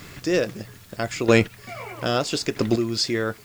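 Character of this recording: chopped level 0.78 Hz, depth 65%, duty 15%; a quantiser's noise floor 10-bit, dither triangular

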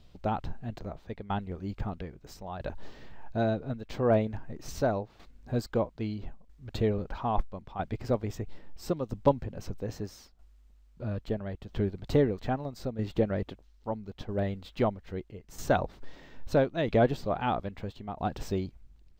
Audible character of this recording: tremolo saw down 0.77 Hz, depth 65%

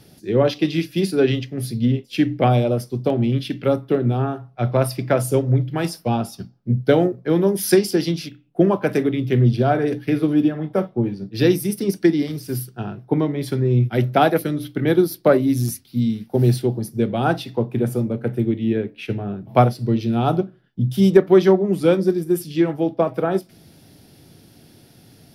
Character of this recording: noise floor -51 dBFS; spectral tilt -6.5 dB/oct

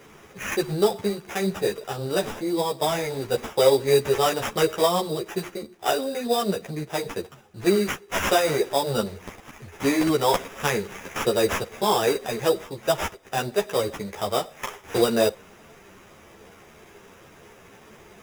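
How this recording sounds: aliases and images of a low sample rate 4300 Hz, jitter 0%; a shimmering, thickened sound

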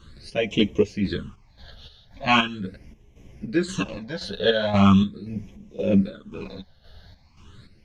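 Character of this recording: phasing stages 8, 0.4 Hz, lowest notch 310–1400 Hz; chopped level 1.9 Hz, depth 65%, duty 55%; a shimmering, thickened sound

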